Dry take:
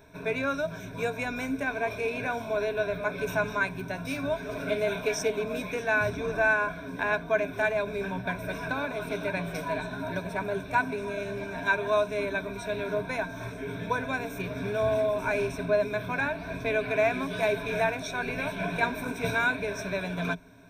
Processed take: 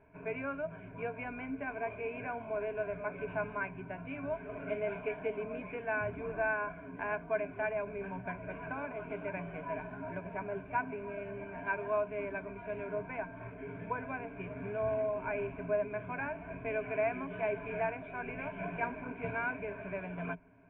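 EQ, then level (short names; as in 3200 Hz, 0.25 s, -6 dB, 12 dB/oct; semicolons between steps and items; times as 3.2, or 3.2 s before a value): rippled Chebyshev low-pass 3100 Hz, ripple 3 dB; air absorption 270 m; notch 520 Hz, Q 12; -5.5 dB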